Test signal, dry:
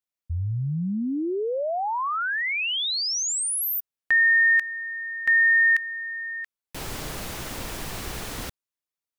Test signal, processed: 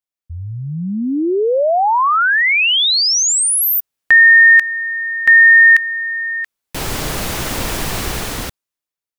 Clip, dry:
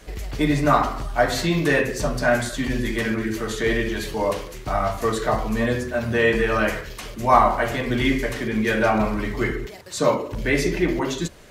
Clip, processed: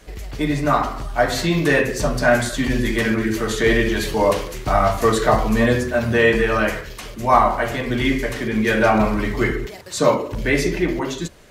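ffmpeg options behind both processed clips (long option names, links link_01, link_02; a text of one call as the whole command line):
ffmpeg -i in.wav -af "dynaudnorm=framelen=320:gausssize=7:maxgain=14dB,volume=-1dB" out.wav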